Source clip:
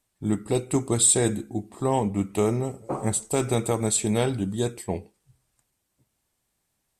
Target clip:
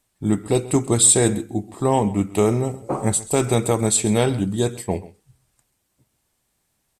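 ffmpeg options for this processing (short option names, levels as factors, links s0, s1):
-af "aecho=1:1:132:0.119,volume=1.78"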